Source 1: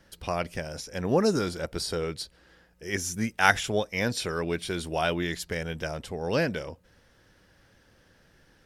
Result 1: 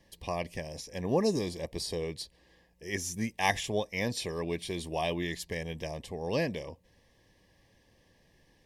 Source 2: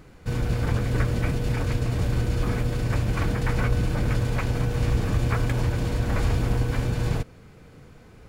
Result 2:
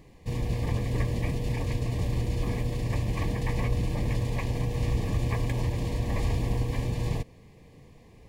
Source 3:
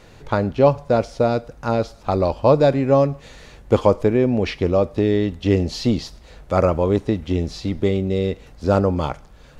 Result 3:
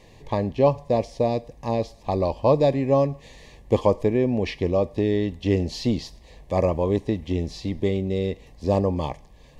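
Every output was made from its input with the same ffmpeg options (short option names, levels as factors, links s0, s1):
-af "asuperstop=centerf=1400:order=8:qfactor=2.9,volume=0.631"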